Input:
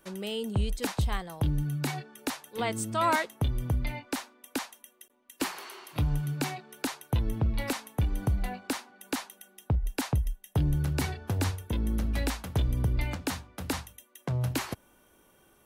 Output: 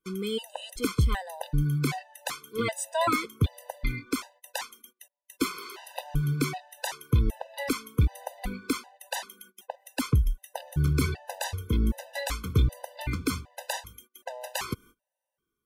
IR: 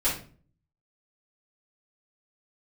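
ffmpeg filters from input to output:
-af "agate=range=-26dB:threshold=-54dB:ratio=16:detection=peak,afftfilt=real='re*gt(sin(2*PI*1.3*pts/sr)*(1-2*mod(floor(b*sr/1024/510),2)),0)':imag='im*gt(sin(2*PI*1.3*pts/sr)*(1-2*mod(floor(b*sr/1024/510),2)),0)':win_size=1024:overlap=0.75,volume=5dB"

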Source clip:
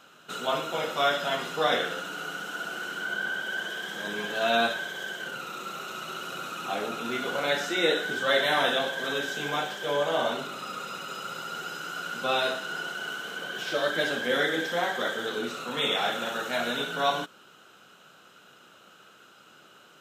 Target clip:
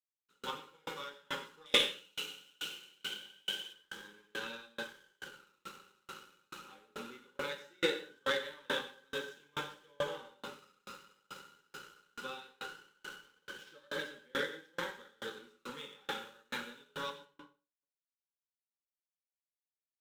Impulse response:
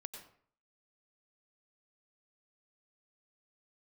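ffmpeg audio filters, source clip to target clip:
-filter_complex "[0:a]asplit=3[a][b][c];[a]afade=t=out:st=1.65:d=0.02[d];[b]highshelf=f=2k:t=q:w=3:g=8.5,afade=t=in:st=1.65:d=0.02,afade=t=out:st=3.72:d=0.02[e];[c]afade=t=in:st=3.72:d=0.02[f];[d][e][f]amix=inputs=3:normalize=0,aeval=exprs='sgn(val(0))*max(abs(val(0))-0.0075,0)':c=same,aeval=exprs='0.562*(cos(1*acos(clip(val(0)/0.562,-1,1)))-cos(1*PI/2))+0.0708*(cos(3*acos(clip(val(0)/0.562,-1,1)))-cos(3*PI/2))+0.0141*(cos(7*acos(clip(val(0)/0.562,-1,1)))-cos(7*PI/2))':c=same,asuperstop=centerf=680:order=20:qfactor=3.8,aecho=1:1:64|128|192|256|320:0.0891|0.0517|0.03|0.0174|0.0101[g];[1:a]atrim=start_sample=2205[h];[g][h]afir=irnorm=-1:irlink=0,aeval=exprs='val(0)*pow(10,-37*if(lt(mod(2.3*n/s,1),2*abs(2.3)/1000),1-mod(2.3*n/s,1)/(2*abs(2.3)/1000),(mod(2.3*n/s,1)-2*abs(2.3)/1000)/(1-2*abs(2.3)/1000))/20)':c=same,volume=7dB"

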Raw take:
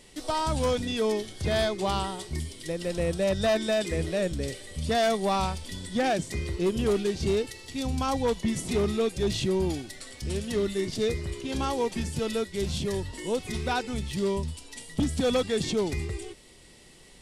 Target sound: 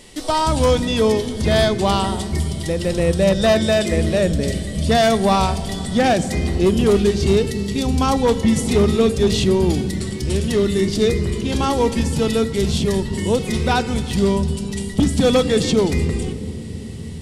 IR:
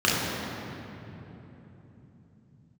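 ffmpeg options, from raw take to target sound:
-filter_complex "[0:a]asplit=2[a][b];[1:a]atrim=start_sample=2205,lowshelf=f=200:g=11[c];[b][c]afir=irnorm=-1:irlink=0,volume=-32.5dB[d];[a][d]amix=inputs=2:normalize=0,volume=9dB"

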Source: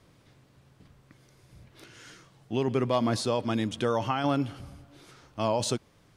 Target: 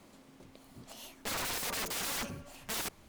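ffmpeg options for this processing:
-af "asubboost=boost=3.5:cutoff=56,aeval=exprs='(mod(39.8*val(0)+1,2)-1)/39.8':c=same,asetrate=88200,aresample=44100,volume=1.5dB"

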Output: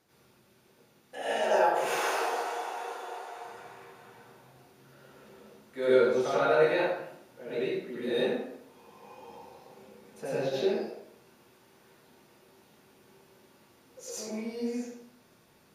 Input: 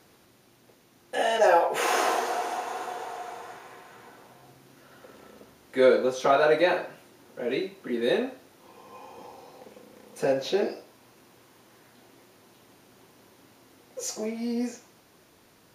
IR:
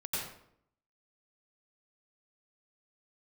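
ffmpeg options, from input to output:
-filter_complex "[0:a]asettb=1/sr,asplit=3[a][b][c];[a]atrim=end=1.874[d];[b]atrim=start=1.87:end=3.36,asetpts=PTS-STARTPTS,afade=t=in:d=0.004:c=qsin,afade=t=out:st=1.486:d=0.004:c=qsin,highpass=f=300:w=0.5412,highpass=f=300:w=1.3066[e];[c]atrim=start=3.356[f];[d][e]acrossfade=d=0.004:c1=hsin:c2=qsin[g];[g][f]acrossfade=d=0.004:c1=qsin:c2=hsin[h];[1:a]atrim=start_sample=2205[i];[h][i]afir=irnorm=-1:irlink=0,volume=-7.5dB"

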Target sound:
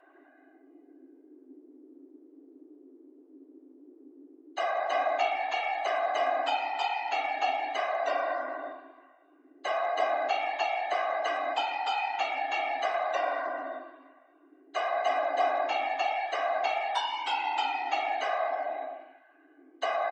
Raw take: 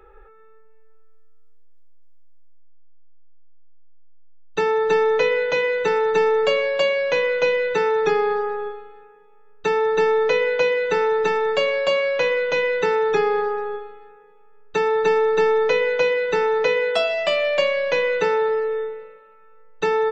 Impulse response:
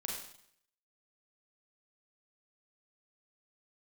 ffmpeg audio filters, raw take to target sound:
-filter_complex "[0:a]afftfilt=real='hypot(re,im)*cos(2*PI*random(0))':imag='hypot(re,im)*sin(2*PI*random(1))':win_size=512:overlap=0.75,asplit=2[a][b];[b]adelay=160,highpass=300,lowpass=3.4k,asoftclip=type=hard:threshold=-20dB,volume=-24dB[c];[a][c]amix=inputs=2:normalize=0,afreqshift=260,volume=-4dB"

